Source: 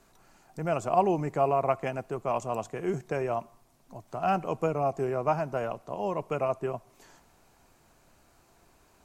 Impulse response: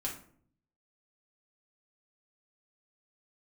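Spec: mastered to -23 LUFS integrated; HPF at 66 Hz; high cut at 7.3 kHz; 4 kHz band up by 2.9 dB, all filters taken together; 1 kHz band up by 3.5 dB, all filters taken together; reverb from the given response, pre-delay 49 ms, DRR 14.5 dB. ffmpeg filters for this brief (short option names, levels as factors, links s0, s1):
-filter_complex "[0:a]highpass=66,lowpass=7300,equalizer=f=1000:t=o:g=5,equalizer=f=4000:t=o:g=4.5,asplit=2[s0][s1];[1:a]atrim=start_sample=2205,adelay=49[s2];[s1][s2]afir=irnorm=-1:irlink=0,volume=0.158[s3];[s0][s3]amix=inputs=2:normalize=0,volume=1.68"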